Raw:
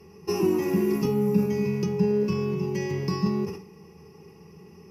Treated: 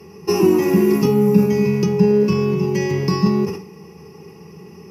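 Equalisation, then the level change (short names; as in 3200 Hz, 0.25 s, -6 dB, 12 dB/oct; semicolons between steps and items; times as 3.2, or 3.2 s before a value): HPF 92 Hz; +9.0 dB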